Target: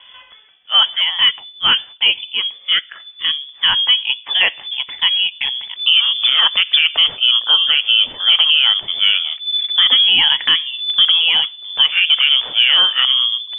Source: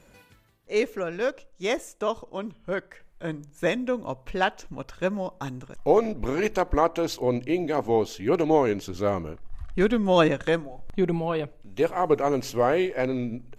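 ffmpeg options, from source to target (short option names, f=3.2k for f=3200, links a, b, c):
-af "lowpass=f=3k:t=q:w=0.5098,lowpass=f=3k:t=q:w=0.6013,lowpass=f=3k:t=q:w=0.9,lowpass=f=3k:t=q:w=2.563,afreqshift=-3500,alimiter=level_in=15dB:limit=-1dB:release=50:level=0:latency=1,volume=-2dB" -ar 44100 -c:a libvorbis -b:a 64k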